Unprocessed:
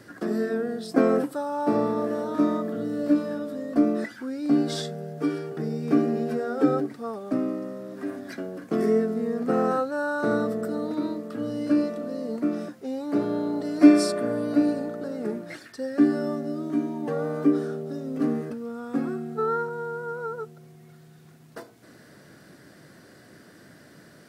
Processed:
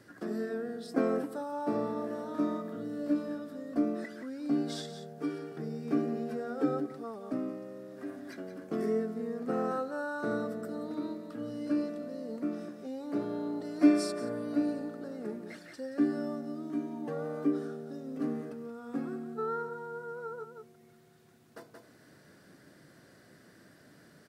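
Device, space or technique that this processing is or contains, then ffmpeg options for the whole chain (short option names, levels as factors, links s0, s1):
ducked delay: -filter_complex "[0:a]asplit=3[s0][s1][s2];[s1]adelay=177,volume=0.596[s3];[s2]apad=whole_len=1078852[s4];[s3][s4]sidechaincompress=threshold=0.0141:ratio=4:attack=16:release=272[s5];[s0][s5]amix=inputs=2:normalize=0,volume=0.376"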